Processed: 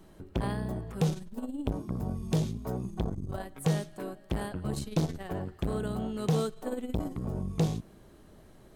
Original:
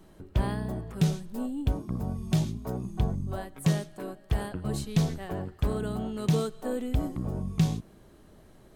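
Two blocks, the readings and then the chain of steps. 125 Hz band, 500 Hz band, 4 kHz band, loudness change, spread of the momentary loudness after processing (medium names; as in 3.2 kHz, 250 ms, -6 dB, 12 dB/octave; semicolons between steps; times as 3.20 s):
-3.5 dB, 0.0 dB, -3.0 dB, -2.5 dB, 8 LU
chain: transformer saturation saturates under 430 Hz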